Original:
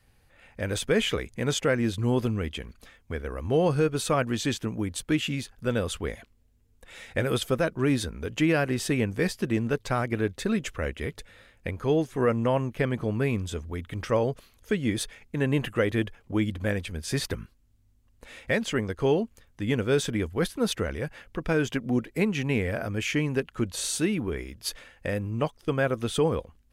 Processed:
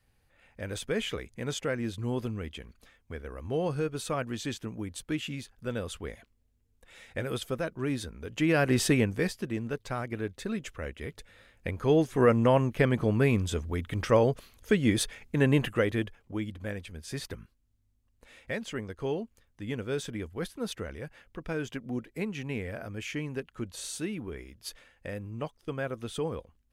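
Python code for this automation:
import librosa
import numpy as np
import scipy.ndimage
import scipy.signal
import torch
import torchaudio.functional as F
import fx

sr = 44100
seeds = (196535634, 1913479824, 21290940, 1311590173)

y = fx.gain(x, sr, db=fx.line((8.26, -7.0), (8.79, 4.0), (9.49, -7.0), (10.96, -7.0), (12.12, 2.0), (15.47, 2.0), (16.45, -8.5)))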